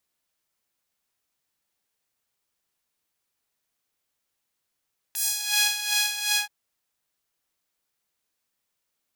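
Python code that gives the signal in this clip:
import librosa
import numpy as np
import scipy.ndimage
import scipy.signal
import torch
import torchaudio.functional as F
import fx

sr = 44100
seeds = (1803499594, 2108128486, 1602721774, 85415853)

y = fx.sub_patch_tremolo(sr, seeds[0], note=80, wave='saw', wave2='saw', interval_st=0, detune_cents=16, level2_db=-9.0, sub_db=-23, noise_db=-30.0, kind='highpass', cutoff_hz=1300.0, q=0.83, env_oct=3.0, env_decay_s=0.38, env_sustain_pct=40, attack_ms=8.0, decay_s=0.7, sustain_db=-4.0, release_s=0.12, note_s=1.21, lfo_hz=2.7, tremolo_db=10)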